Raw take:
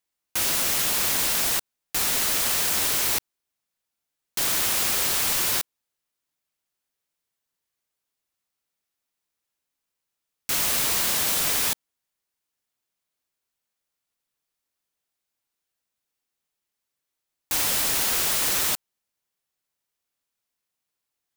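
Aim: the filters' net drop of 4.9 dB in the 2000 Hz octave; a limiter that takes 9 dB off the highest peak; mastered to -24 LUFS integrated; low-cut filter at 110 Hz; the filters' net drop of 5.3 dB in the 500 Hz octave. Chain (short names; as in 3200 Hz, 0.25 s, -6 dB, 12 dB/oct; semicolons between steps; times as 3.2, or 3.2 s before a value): HPF 110 Hz; bell 500 Hz -6.5 dB; bell 2000 Hz -6 dB; gain +3.5 dB; limiter -16.5 dBFS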